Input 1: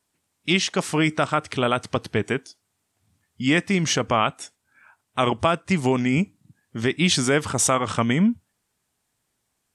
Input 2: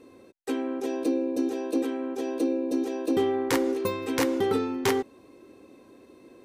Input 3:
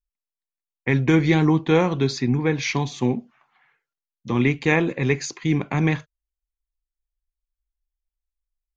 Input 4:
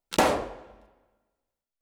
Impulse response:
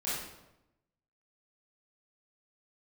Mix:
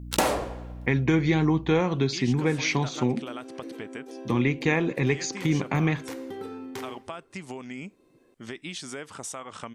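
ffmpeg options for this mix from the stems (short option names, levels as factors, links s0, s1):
-filter_complex "[0:a]equalizer=f=64:t=o:w=2.3:g=-13.5,adelay=1650,volume=0.376[s0];[1:a]adelay=1900,volume=0.282,asplit=2[s1][s2];[s2]volume=0.15[s3];[2:a]volume=1[s4];[3:a]crystalizer=i=1:c=0,aeval=exprs='val(0)+0.0112*(sin(2*PI*60*n/s)+sin(2*PI*2*60*n/s)/2+sin(2*PI*3*60*n/s)/3+sin(2*PI*4*60*n/s)/4+sin(2*PI*5*60*n/s)/5)':c=same,volume=1.19[s5];[s0][s1]amix=inputs=2:normalize=0,acompressor=threshold=0.0178:ratio=4,volume=1[s6];[4:a]atrim=start_sample=2205[s7];[s3][s7]afir=irnorm=-1:irlink=0[s8];[s4][s5][s6][s8]amix=inputs=4:normalize=0,acompressor=threshold=0.0794:ratio=2"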